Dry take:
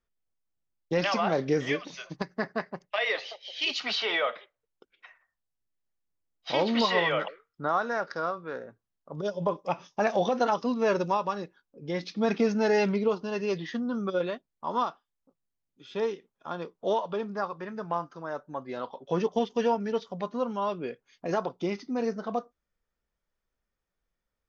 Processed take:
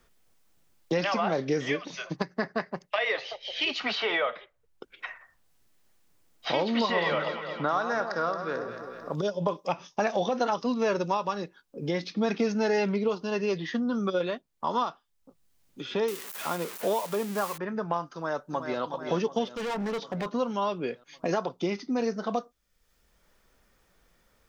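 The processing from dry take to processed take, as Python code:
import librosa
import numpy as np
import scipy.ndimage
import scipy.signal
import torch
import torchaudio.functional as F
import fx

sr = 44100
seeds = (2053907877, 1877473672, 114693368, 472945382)

y = fx.echo_alternate(x, sr, ms=111, hz=1300.0, feedback_pct=63, wet_db=-7.5, at=(6.78, 9.15))
y = fx.crossing_spikes(y, sr, level_db=-24.0, at=(16.08, 17.58))
y = fx.echo_throw(y, sr, start_s=18.13, length_s=0.68, ms=370, feedback_pct=60, wet_db=-7.5)
y = fx.overload_stage(y, sr, gain_db=33.5, at=(19.47, 20.26))
y = fx.band_squash(y, sr, depth_pct=70)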